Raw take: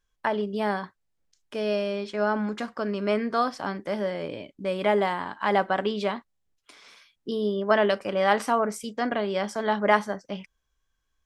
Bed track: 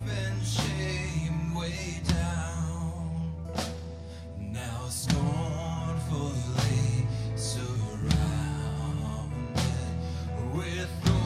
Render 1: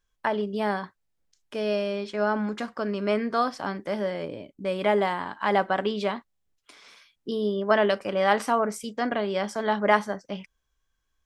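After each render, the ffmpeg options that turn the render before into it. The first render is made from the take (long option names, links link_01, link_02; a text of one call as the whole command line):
ffmpeg -i in.wav -filter_complex "[0:a]asettb=1/sr,asplit=3[link_01][link_02][link_03];[link_01]atrim=end=4.254[link_04];[link_02]atrim=start=4.25:end=4.65,asetpts=PTS-STARTPTS,afade=type=in:duration=0.004:curve=qsin,afade=type=out:start_time=0.396:duration=0.004:curve=qsin,equalizer=frequency=2800:width_type=o:width=2.8:gain=-7[link_05];[link_03]atrim=start=4.646[link_06];[link_04][link_05]acrossfade=duration=0.004:curve1=hsin:curve2=qsin[link_07];[link_07][link_06]acrossfade=duration=0.004:curve1=qsin:curve2=hsin" out.wav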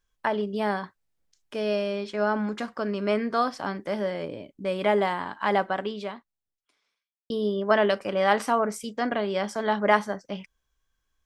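ffmpeg -i in.wav -filter_complex "[0:a]asplit=2[link_01][link_02];[link_01]atrim=end=7.3,asetpts=PTS-STARTPTS,afade=type=out:start_time=5.47:duration=1.83:curve=qua[link_03];[link_02]atrim=start=7.3,asetpts=PTS-STARTPTS,afade=type=in:duration=0.004:curve=hsin[link_04];[link_03][link_04]concat=n=2:v=0:a=1" out.wav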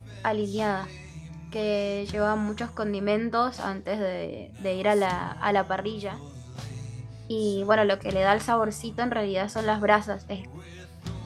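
ffmpeg -i in.wav -i bed.wav -filter_complex "[1:a]volume=-11.5dB[link_01];[0:a][link_01]amix=inputs=2:normalize=0" out.wav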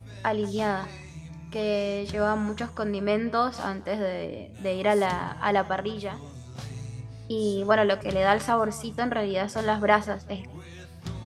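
ffmpeg -i in.wav -af "aecho=1:1:182:0.0794" out.wav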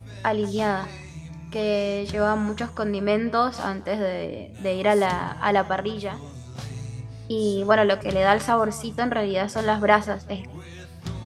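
ffmpeg -i in.wav -af "volume=3dB" out.wav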